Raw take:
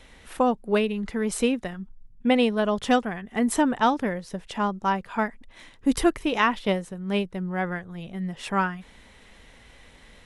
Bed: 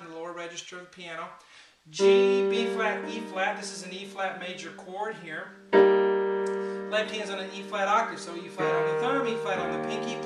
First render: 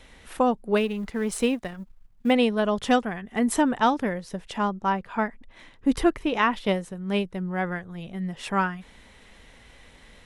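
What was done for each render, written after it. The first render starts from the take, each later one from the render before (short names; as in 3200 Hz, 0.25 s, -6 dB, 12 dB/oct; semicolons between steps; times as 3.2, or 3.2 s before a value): 0.77–2.33 G.711 law mismatch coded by A; 4.69–6.53 high shelf 5000 Hz -9.5 dB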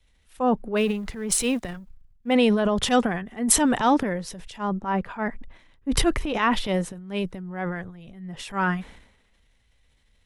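transient shaper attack -5 dB, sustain +9 dB; three-band expander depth 70%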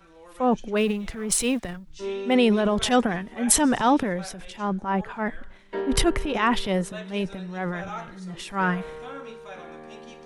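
add bed -11.5 dB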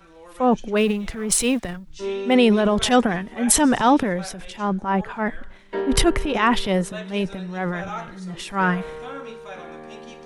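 gain +3.5 dB; limiter -3 dBFS, peak gain reduction 3 dB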